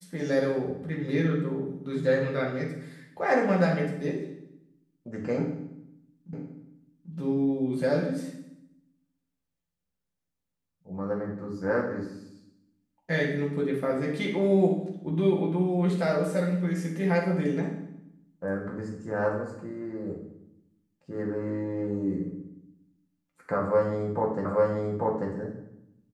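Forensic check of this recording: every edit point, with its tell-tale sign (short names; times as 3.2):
6.33 repeat of the last 0.79 s
24.45 repeat of the last 0.84 s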